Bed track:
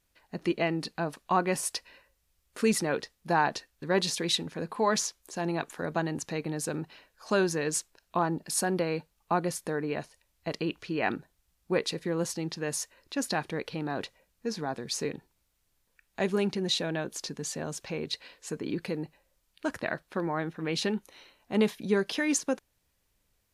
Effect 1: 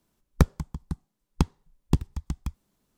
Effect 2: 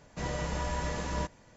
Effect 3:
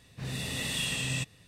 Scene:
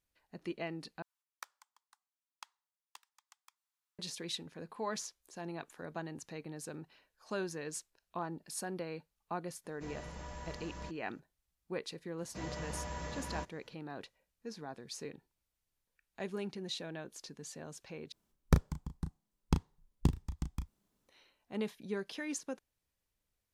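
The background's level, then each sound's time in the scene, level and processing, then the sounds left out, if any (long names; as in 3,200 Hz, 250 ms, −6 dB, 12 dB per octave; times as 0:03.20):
bed track −12 dB
0:01.02: overwrite with 1 −14.5 dB + high-pass filter 980 Hz 24 dB per octave
0:09.64: mix in 2 −13 dB
0:12.18: mix in 2 −8 dB + high-pass filter 50 Hz
0:18.12: overwrite with 1 −7 dB + double-tracking delay 34 ms −8 dB
not used: 3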